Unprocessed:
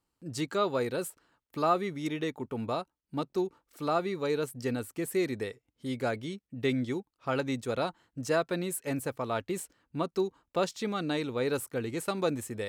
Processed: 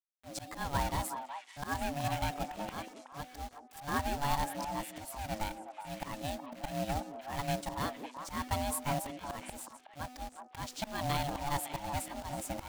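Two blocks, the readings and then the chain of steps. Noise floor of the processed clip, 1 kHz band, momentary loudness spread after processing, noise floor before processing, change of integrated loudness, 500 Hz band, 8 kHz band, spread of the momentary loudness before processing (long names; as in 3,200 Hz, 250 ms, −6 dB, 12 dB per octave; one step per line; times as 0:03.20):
−57 dBFS, 0.0 dB, 12 LU, −85 dBFS, −5.0 dB, −11.0 dB, 0.0 dB, 8 LU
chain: ring modulation 430 Hz
hum removal 250.7 Hz, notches 3
in parallel at 0 dB: downward compressor 4 to 1, threshold −41 dBFS, peak gain reduction 15 dB
on the sum: volume swells 196 ms
log-companded quantiser 4 bits
on a send: echo through a band-pass that steps 185 ms, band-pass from 360 Hz, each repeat 1.4 octaves, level −2.5 dB
on the sum: level −1.5 dB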